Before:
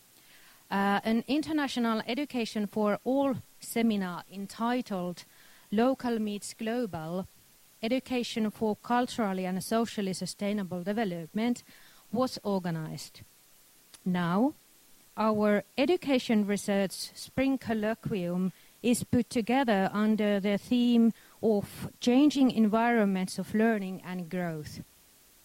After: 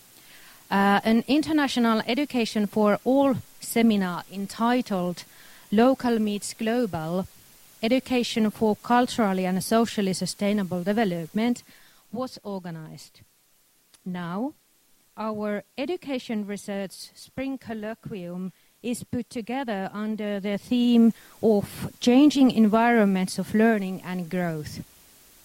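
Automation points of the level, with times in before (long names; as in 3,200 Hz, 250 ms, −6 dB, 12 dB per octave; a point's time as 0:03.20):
0:11.26 +7 dB
0:12.29 −3 dB
0:20.18 −3 dB
0:21.01 +6 dB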